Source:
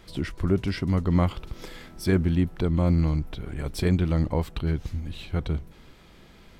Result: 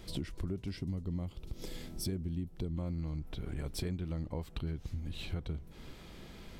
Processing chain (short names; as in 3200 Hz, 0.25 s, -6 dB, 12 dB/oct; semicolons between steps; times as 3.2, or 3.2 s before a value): bell 1400 Hz -7.5 dB 2 oct, from 0.77 s -14 dB, from 2.76 s -3.5 dB; compressor 6:1, threshold -37 dBFS, peak gain reduction 18.5 dB; gain +2 dB